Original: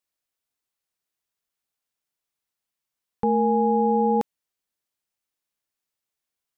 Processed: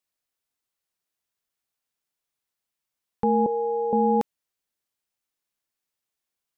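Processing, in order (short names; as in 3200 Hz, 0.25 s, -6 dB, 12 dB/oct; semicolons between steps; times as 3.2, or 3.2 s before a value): 3.46–3.93 ladder high-pass 420 Hz, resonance 55%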